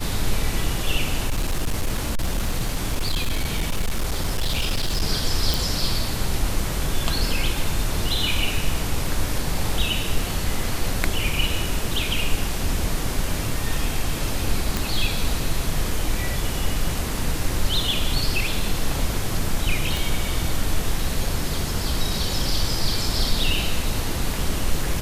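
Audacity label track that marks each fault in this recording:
1.270000	5.030000	clipped -18 dBFS
5.540000	5.540000	pop
14.770000	14.770000	pop
19.970000	19.970000	pop

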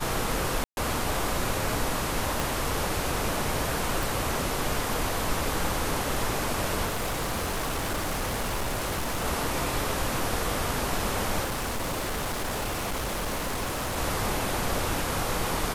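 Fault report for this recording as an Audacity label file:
0.640000	0.770000	dropout 131 ms
2.400000	2.400000	pop
4.030000	4.030000	pop
6.850000	9.260000	clipped -25.5 dBFS
11.440000	13.980000	clipped -27 dBFS

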